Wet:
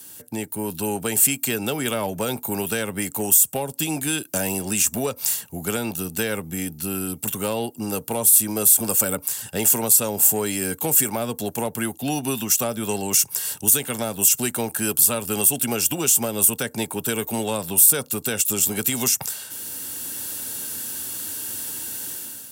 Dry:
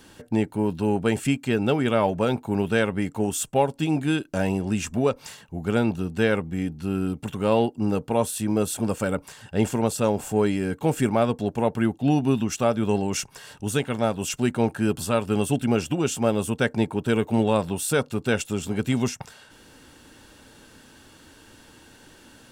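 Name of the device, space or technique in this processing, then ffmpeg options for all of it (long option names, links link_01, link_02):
FM broadcast chain: -filter_complex "[0:a]highpass=frequency=75:width=0.5412,highpass=frequency=75:width=1.3066,dynaudnorm=framelen=470:gausssize=3:maxgain=11.5dB,acrossover=split=180|460[link_01][link_02][link_03];[link_01]acompressor=threshold=-31dB:ratio=4[link_04];[link_02]acompressor=threshold=-24dB:ratio=4[link_05];[link_03]acompressor=threshold=-21dB:ratio=4[link_06];[link_04][link_05][link_06]amix=inputs=3:normalize=0,aemphasis=mode=production:type=50fm,alimiter=limit=-10dB:level=0:latency=1:release=88,asoftclip=type=hard:threshold=-12dB,lowpass=frequency=15000:width=0.5412,lowpass=frequency=15000:width=1.3066,aemphasis=mode=production:type=50fm,volume=-4.5dB"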